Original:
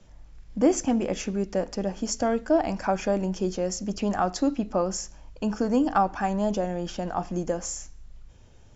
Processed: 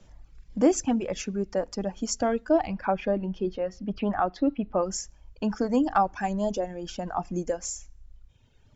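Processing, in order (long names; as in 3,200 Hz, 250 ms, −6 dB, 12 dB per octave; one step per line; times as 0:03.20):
reverb reduction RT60 2 s
0:02.67–0:04.83: low-pass filter 3,500 Hz 24 dB per octave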